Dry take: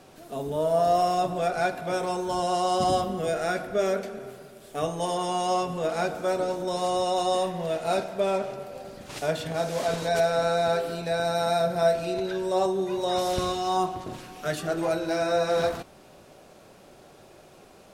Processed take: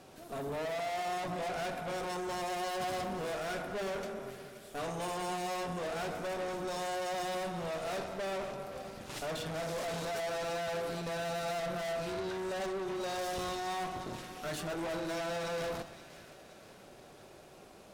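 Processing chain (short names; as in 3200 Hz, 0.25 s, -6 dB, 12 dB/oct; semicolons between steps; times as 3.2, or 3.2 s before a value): tube stage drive 35 dB, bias 0.65; split-band echo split 1400 Hz, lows 0.106 s, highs 0.524 s, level -13.5 dB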